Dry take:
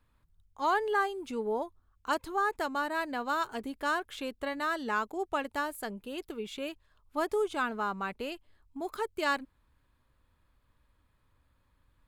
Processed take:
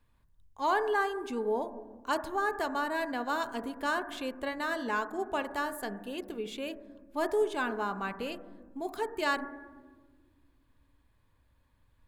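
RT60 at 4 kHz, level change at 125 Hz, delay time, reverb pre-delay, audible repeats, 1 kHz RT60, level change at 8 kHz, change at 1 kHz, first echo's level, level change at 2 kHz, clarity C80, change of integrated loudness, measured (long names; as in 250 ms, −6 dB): 1.0 s, can't be measured, no echo audible, 4 ms, no echo audible, 1.2 s, 0.0 dB, −0.5 dB, no echo audible, 0.0 dB, 14.5 dB, 0.0 dB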